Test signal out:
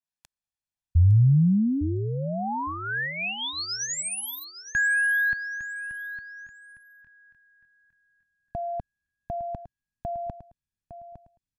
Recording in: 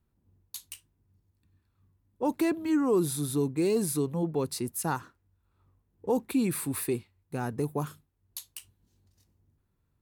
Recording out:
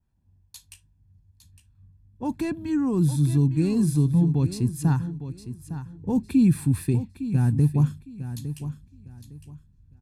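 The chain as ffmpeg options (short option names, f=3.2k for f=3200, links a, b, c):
-filter_complex "[0:a]lowpass=10k,asubboost=boost=10:cutoff=210,aecho=1:1:1.2:0.46,adynamicequalizer=threshold=0.0112:dfrequency=3700:dqfactor=0.89:tfrequency=3700:tqfactor=0.89:attack=5:release=100:ratio=0.375:range=2:mode=cutabove:tftype=bell,asplit=2[a][b];[b]aecho=0:1:858|1716|2574:0.251|0.0603|0.0145[c];[a][c]amix=inputs=2:normalize=0,volume=-2.5dB"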